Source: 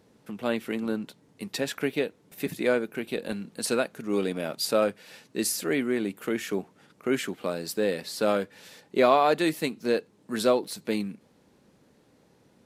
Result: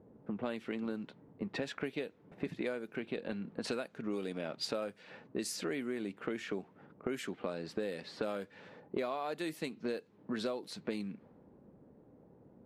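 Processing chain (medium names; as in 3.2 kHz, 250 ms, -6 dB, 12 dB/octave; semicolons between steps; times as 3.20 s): level-controlled noise filter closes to 710 Hz, open at -21.5 dBFS; compression 10:1, threshold -36 dBFS, peak gain reduction 20.5 dB; trim +2 dB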